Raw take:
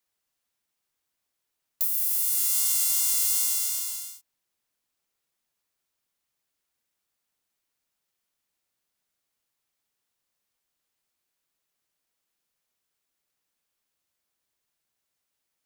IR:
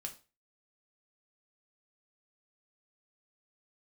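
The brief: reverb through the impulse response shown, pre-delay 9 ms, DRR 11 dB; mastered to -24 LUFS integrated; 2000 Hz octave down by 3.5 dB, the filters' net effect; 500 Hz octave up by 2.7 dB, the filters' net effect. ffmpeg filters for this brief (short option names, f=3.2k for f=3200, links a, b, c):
-filter_complex "[0:a]equalizer=f=500:t=o:g=6,equalizer=f=2k:t=o:g=-5,asplit=2[a][b];[1:a]atrim=start_sample=2205,adelay=9[c];[b][c]afir=irnorm=-1:irlink=0,volume=-8.5dB[d];[a][d]amix=inputs=2:normalize=0,volume=-2dB"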